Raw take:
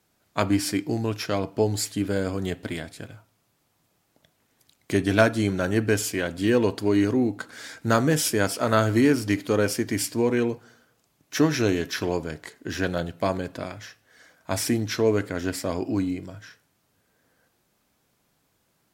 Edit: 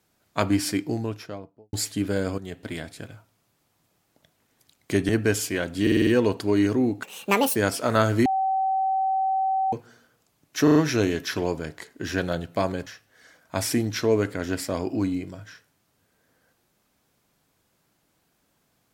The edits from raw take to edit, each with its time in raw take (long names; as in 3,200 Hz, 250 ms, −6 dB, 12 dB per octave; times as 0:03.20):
0:00.72–0:01.73: fade out and dull
0:02.38–0:02.85: fade in, from −12.5 dB
0:05.09–0:05.72: remove
0:06.45: stutter 0.05 s, 6 plays
0:07.41–0:08.33: play speed 175%
0:09.03–0:10.50: beep over 767 Hz −20.5 dBFS
0:11.41: stutter 0.04 s, 4 plays
0:13.52–0:13.82: remove